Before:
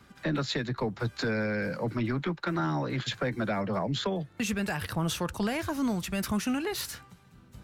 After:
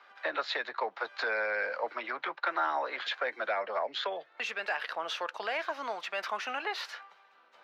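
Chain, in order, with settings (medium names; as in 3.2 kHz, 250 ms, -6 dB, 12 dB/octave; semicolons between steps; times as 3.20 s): 3.17–5.81 s: dynamic bell 950 Hz, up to -4 dB, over -48 dBFS, Q 1.3; high-pass 600 Hz 24 dB/octave; distance through air 260 m; trim +5.5 dB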